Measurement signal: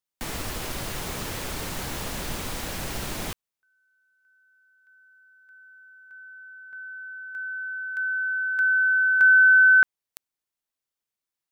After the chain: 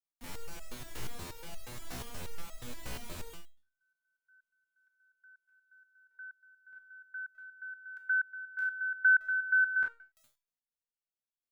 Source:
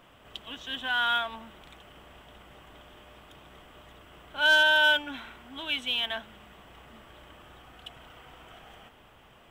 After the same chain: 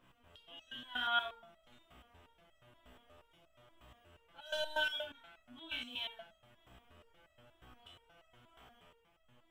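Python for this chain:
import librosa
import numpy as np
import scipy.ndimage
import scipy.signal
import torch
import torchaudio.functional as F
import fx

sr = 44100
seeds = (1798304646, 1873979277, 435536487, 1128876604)

y = fx.low_shelf(x, sr, hz=140.0, db=5.5)
y = fx.rev_schroeder(y, sr, rt60_s=0.31, comb_ms=25, drr_db=2.0)
y = fx.resonator_held(y, sr, hz=8.4, low_hz=62.0, high_hz=650.0)
y = F.gain(torch.from_numpy(y), -5.0).numpy()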